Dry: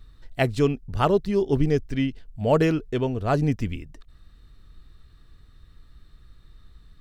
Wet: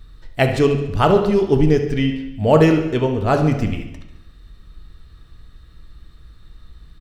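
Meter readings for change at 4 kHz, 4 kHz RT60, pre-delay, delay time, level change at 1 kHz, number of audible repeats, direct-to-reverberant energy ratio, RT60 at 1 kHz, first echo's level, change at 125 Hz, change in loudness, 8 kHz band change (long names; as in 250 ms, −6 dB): +7.0 dB, 0.85 s, 4 ms, 71 ms, +7.0 dB, 4, 4.0 dB, 0.90 s, −12.0 dB, +6.5 dB, +7.0 dB, can't be measured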